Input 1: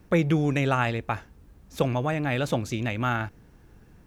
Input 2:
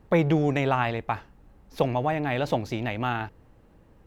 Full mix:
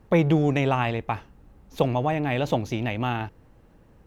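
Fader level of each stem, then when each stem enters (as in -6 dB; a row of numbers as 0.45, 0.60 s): -11.0, +0.5 dB; 0.00, 0.00 s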